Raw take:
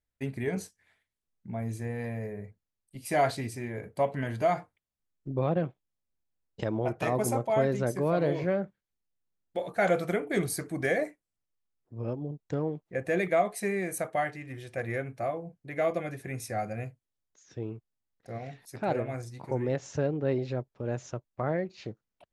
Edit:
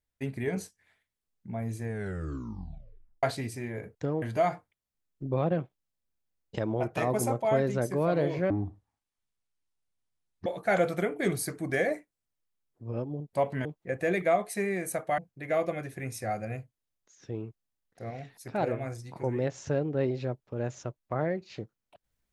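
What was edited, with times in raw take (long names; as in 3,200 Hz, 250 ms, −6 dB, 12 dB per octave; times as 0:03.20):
0:01.83: tape stop 1.40 s
0:03.95–0:04.27: swap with 0:12.44–0:12.71
0:08.55–0:09.57: play speed 52%
0:14.24–0:15.46: remove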